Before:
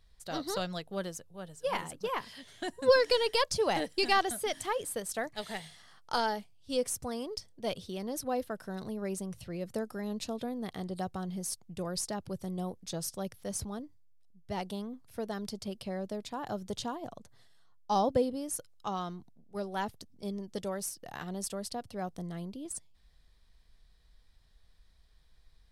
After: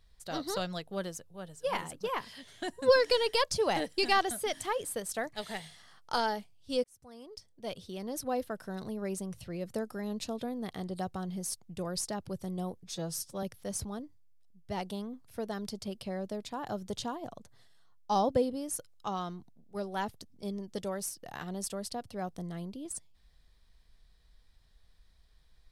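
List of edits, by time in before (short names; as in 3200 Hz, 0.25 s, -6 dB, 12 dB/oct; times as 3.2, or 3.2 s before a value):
6.84–8.27 fade in
12.83–13.23 stretch 1.5×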